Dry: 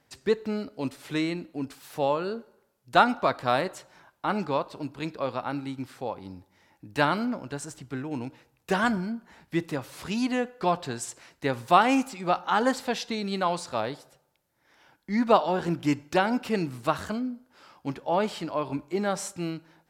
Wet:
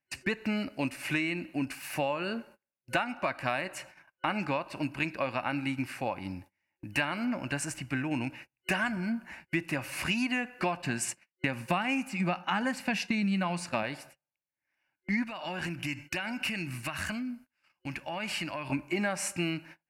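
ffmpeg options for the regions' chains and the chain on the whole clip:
ffmpeg -i in.wav -filter_complex "[0:a]asettb=1/sr,asplit=3[link_01][link_02][link_03];[link_01]atrim=end=10.824[link_04];[link_02]atrim=start=10.82:end=13.83,asetpts=PTS-STARTPTS,afade=type=in:duration=0.004:curve=qsin,afade=type=out:start_time=3.006:duration=0.004:curve=qsin,agate=range=-33dB:threshold=-40dB:ratio=3:release=100:detection=peak,equalizer=frequency=190:width_type=o:width=0.53:gain=12[link_05];[link_03]atrim=start=13.826[link_06];[link_04][link_05]acrossfade=duration=0.004:curve1=hsin:curve2=qsin[link_07];[link_07][link_06]acrossfade=duration=0.004:curve1=qsin:curve2=hsin,asettb=1/sr,asplit=3[link_08][link_09][link_10];[link_08]atrim=end=15.244[link_11];[link_09]atrim=start=15.24:end=18.7,asetpts=PTS-STARTPTS,afade=type=in:duration=0.004:curve=qsin,afade=type=out:start_time=3.456:duration=0.004:curve=qsin,equalizer=frequency=490:width=0.45:gain=-8,acompressor=threshold=-35dB:ratio=20:attack=3.2:release=140:knee=1:detection=peak[link_12];[link_10]atrim=start=18.696[link_13];[link_11][link_12]acrossfade=duration=0.004:curve1=hsin:curve2=qsin[link_14];[link_14][link_13]acrossfade=duration=0.004:curve1=qsin:curve2=hsin,agate=range=-29dB:threshold=-52dB:ratio=16:detection=peak,superequalizer=7b=0.355:11b=2.24:12b=3.55:13b=0.562:16b=1.58,acompressor=threshold=-30dB:ratio=10,volume=3.5dB" out.wav

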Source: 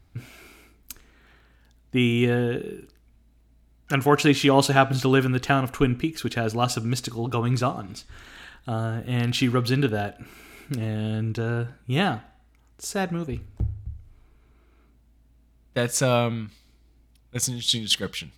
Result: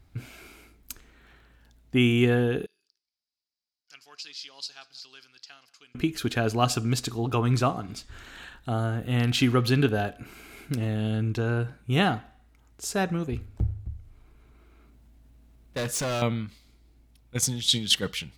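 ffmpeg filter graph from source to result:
ffmpeg -i in.wav -filter_complex "[0:a]asettb=1/sr,asplit=3[link_01][link_02][link_03];[link_01]atrim=end=2.664[link_04];[link_02]atrim=start=2.66:end=5.95,asetpts=PTS-STARTPTS,afade=type=in:duration=0.004:curve=qsin,afade=type=out:start_time=3.286:duration=0.004:curve=qsin,bandpass=frequency=4900:width_type=q:width=8.1,aecho=1:1:183:0.0668,atrim=end_sample=145089[link_05];[link_03]atrim=start=5.946[link_06];[link_04][link_05]acrossfade=duration=0.004:curve1=hsin:curve2=qsin[link_07];[link_07][link_06]acrossfade=duration=0.004:curve1=qsin:curve2=hsin,asettb=1/sr,asplit=3[link_08][link_09][link_10];[link_08]atrim=end=13.704[link_11];[link_09]atrim=start=13.7:end=16.22,asetpts=PTS-STARTPTS,afade=type=in:duration=0.004:curve=qsin,afade=type=out:start_time=2.516:duration=0.004:curve=qsin,asoftclip=type=hard:threshold=-26.5dB,acompressor=mode=upward:threshold=-49dB:ratio=2.5:attack=3.2:release=140:knee=2.83:detection=peak[link_12];[link_10]atrim=start=16.216[link_13];[link_11][link_12]acrossfade=duration=0.004:curve1=hsin:curve2=qsin[link_14];[link_14][link_13]acrossfade=duration=0.004:curve1=qsin:curve2=hsin" out.wav

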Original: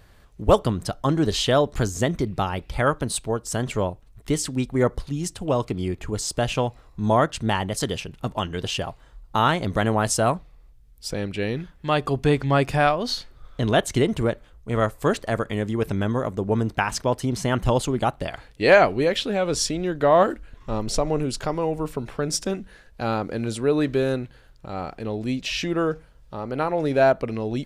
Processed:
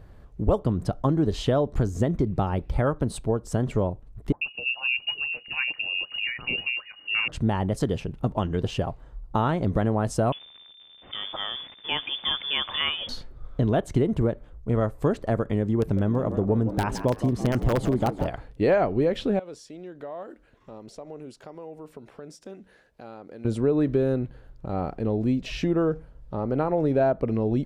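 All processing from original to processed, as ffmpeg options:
ffmpeg -i in.wav -filter_complex "[0:a]asettb=1/sr,asplit=3[link_01][link_02][link_03];[link_01]atrim=end=4.324[link_04];[link_02]atrim=start=4.32:end=7.28,asetpts=PTS-STARTPTS,afade=type=in:duration=0.004:curve=qsin,afade=type=out:start_time=2.956:duration=0.004:curve=qsin,lowshelf=frequency=230:gain=9,acrossover=split=560|2000[link_05][link_06][link_07];[link_05]adelay=90[link_08];[link_06]adelay=760[link_09];[link_08][link_09][link_07]amix=inputs=3:normalize=0,atrim=end_sample=130536,lowpass=frequency=2500:width_type=q:width=0.5098,lowpass=frequency=2500:width_type=q:width=0.6013,lowpass=frequency=2500:width_type=q:width=0.9,lowpass=frequency=2500:width_type=q:width=2.563,afreqshift=-2900[link_10];[link_03]atrim=start=7.276[link_11];[link_04][link_10]acrossfade=duration=0.004:curve1=hsin:curve2=qsin[link_12];[link_12][link_11]acrossfade=duration=0.004:curve1=qsin:curve2=hsin,asettb=1/sr,asplit=3[link_13][link_14][link_15];[link_13]atrim=end=10.324[link_16];[link_14]atrim=start=10.32:end=13.09,asetpts=PTS-STARTPTS,afade=type=in:duration=0.004:curve=qsin,afade=type=out:start_time=2.766:duration=0.004:curve=qsin,aeval=exprs='val(0)+0.5*0.0237*sgn(val(0))':channel_layout=same,agate=range=-33dB:threshold=-34dB:ratio=3:release=100:detection=peak,lowpass=frequency=3100:width_type=q:width=0.5098,lowpass=frequency=3100:width_type=q:width=0.6013,lowpass=frequency=3100:width_type=q:width=0.9,lowpass=frequency=3100:width_type=q:width=2.563,afreqshift=-3600[link_17];[link_15]atrim=start=13.086[link_18];[link_16][link_17]acrossfade=duration=0.004:curve1=hsin:curve2=qsin[link_19];[link_19][link_18]acrossfade=duration=0.004:curve1=qsin:curve2=hsin,asettb=1/sr,asplit=3[link_20][link_21][link_22];[link_20]atrim=end=15.804[link_23];[link_21]atrim=start=15.8:end=18.3,asetpts=PTS-STARTPTS,afade=type=in:duration=0.004:curve=qsin,afade=type=out:start_time=2.496:duration=0.004:curve=qsin,aeval=exprs='(mod(3.55*val(0)+1,2)-1)/3.55':channel_layout=same,asplit=5[link_24][link_25][link_26][link_27][link_28];[link_25]adelay=165,afreqshift=81,volume=-13.5dB[link_29];[link_26]adelay=330,afreqshift=162,volume=-20.2dB[link_30];[link_27]adelay=495,afreqshift=243,volume=-27dB[link_31];[link_28]adelay=660,afreqshift=324,volume=-33.7dB[link_32];[link_24][link_29][link_30][link_31][link_32]amix=inputs=5:normalize=0,atrim=end_sample=110250[link_33];[link_22]atrim=start=18.296[link_34];[link_23][link_33]acrossfade=duration=0.004:curve1=hsin:curve2=qsin[link_35];[link_35][link_34]acrossfade=duration=0.004:curve1=qsin:curve2=hsin,asettb=1/sr,asplit=3[link_36][link_37][link_38];[link_36]atrim=end=19.394[link_39];[link_37]atrim=start=19.39:end=23.45,asetpts=PTS-STARTPTS,afade=type=in:duration=0.004:curve=qsin,afade=type=out:start_time=4.056:duration=0.004:curve=qsin,highpass=frequency=810:poles=1,acompressor=threshold=-47dB:ratio=2:attack=3.2:release=140:knee=1:detection=peak,equalizer=frequency=1100:width_type=o:width=1.1:gain=-4[link_40];[link_38]atrim=start=23.446[link_41];[link_39][link_40]acrossfade=duration=0.004:curve1=hsin:curve2=qsin[link_42];[link_42][link_41]acrossfade=duration=0.004:curve1=qsin:curve2=hsin,tiltshelf=frequency=1300:gain=8.5,acompressor=threshold=-17dB:ratio=3,volume=-3dB" out.wav

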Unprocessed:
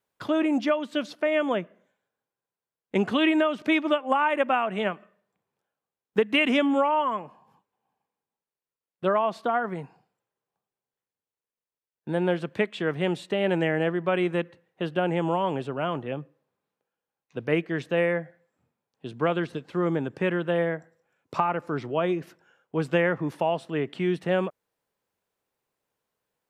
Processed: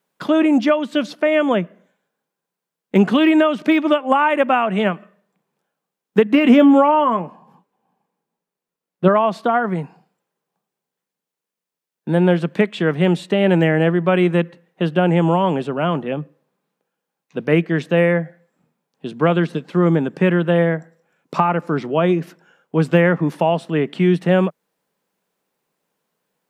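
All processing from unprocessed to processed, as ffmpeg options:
ffmpeg -i in.wav -filter_complex "[0:a]asettb=1/sr,asplit=3[link_01][link_02][link_03];[link_01]atrim=end=6.254[link_04];[link_02]atrim=start=6.25:end=9.08,asetpts=PTS-STARTPTS,afade=type=in:duration=0.004:curve=qsin,afade=type=out:start_time=2.826:duration=0.004:curve=qsin,tiltshelf=frequency=1400:gain=3.5,asplit=2[link_05][link_06];[link_06]adelay=17,volume=-12dB[link_07];[link_05][link_07]amix=inputs=2:normalize=0,atrim=end_sample=124803[link_08];[link_03]atrim=start=9.076[link_09];[link_04][link_08]acrossfade=duration=0.004:curve1=hsin:curve2=qsin[link_10];[link_10][link_09]acrossfade=duration=0.004:curve1=qsin:curve2=hsin,deesser=0.95,lowshelf=frequency=130:width_type=q:width=3:gain=-8,volume=7.5dB" out.wav

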